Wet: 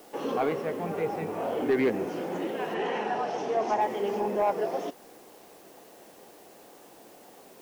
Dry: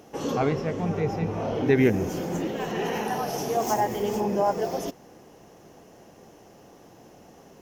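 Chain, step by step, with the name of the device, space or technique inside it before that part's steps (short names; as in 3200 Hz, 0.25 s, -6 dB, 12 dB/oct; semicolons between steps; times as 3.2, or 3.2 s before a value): tape answering machine (BPF 300–3100 Hz; soft clip -17 dBFS, distortion -17 dB; wow and flutter; white noise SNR 27 dB); 2.74–3.81 LPF 6700 Hz 12 dB/oct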